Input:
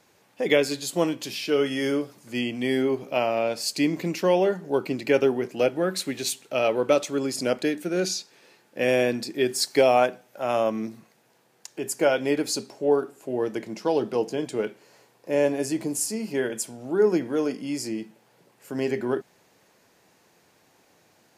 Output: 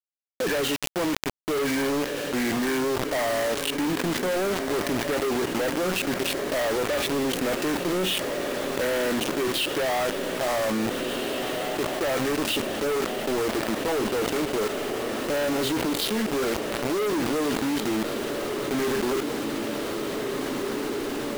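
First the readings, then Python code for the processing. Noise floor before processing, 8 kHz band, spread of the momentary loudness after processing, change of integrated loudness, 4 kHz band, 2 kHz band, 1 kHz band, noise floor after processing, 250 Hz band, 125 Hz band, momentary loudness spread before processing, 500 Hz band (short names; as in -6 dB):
-62 dBFS, 0.0 dB, 4 LU, -1.0 dB, +4.0 dB, +3.0 dB, +1.0 dB, -31 dBFS, +1.0 dB, +0.5 dB, 9 LU, -2.0 dB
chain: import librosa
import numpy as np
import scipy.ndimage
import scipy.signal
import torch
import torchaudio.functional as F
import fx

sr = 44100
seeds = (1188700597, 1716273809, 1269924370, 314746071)

y = fx.freq_compress(x, sr, knee_hz=1100.0, ratio=1.5)
y = fx.env_lowpass(y, sr, base_hz=400.0, full_db=-18.5)
y = scipy.signal.sosfilt(scipy.signal.butter(4, 4100.0, 'lowpass', fs=sr, output='sos'), y)
y = fx.peak_eq(y, sr, hz=89.0, db=-6.0, octaves=0.85)
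y = fx.rider(y, sr, range_db=3, speed_s=2.0)
y = fx.comb_fb(y, sr, f0_hz=830.0, decay_s=0.34, harmonics='all', damping=0.0, mix_pct=50)
y = fx.quant_companded(y, sr, bits=2)
y = fx.echo_diffused(y, sr, ms=1725, feedback_pct=69, wet_db=-14)
y = fx.env_flatten(y, sr, amount_pct=70)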